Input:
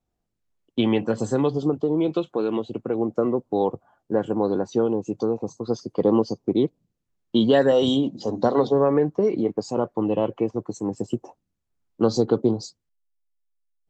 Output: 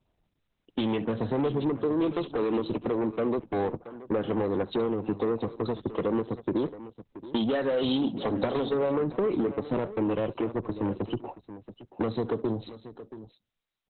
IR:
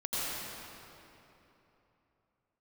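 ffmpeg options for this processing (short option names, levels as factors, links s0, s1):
-filter_complex "[0:a]highshelf=f=3100:g=5.5,asettb=1/sr,asplit=3[s0][s1][s2];[s0]atrim=end=12.084[s3];[s1]atrim=start=12.08:end=12.63,asetpts=PTS-STARTPTS,afade=t=in:d=0.004:c=qsin,afade=t=out:st=0.546:d=0.004:c=qsin,bandreject=f=1100:w=6.5[s4];[s2]atrim=start=12.626[s5];[s3][s4]acrossfade=d=0.004:c1=hsin:c2=qsin[s6];[s6][s5]acrossfade=d=0.004:c1=qsin:c2=hsin,acompressor=threshold=0.0501:ratio=16,asoftclip=type=tanh:threshold=0.0316,aecho=1:1:70|677:0.112|0.188,volume=2.66" -ar 48000 -c:a libopus -b:a 8k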